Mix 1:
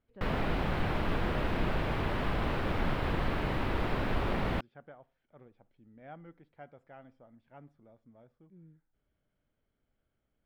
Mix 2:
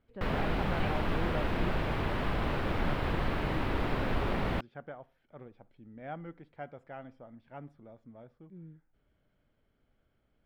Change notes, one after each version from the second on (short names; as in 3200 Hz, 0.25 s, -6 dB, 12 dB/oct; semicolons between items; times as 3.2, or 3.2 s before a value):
speech +7.0 dB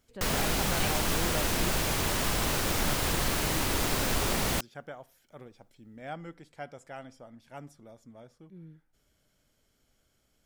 master: remove air absorption 470 m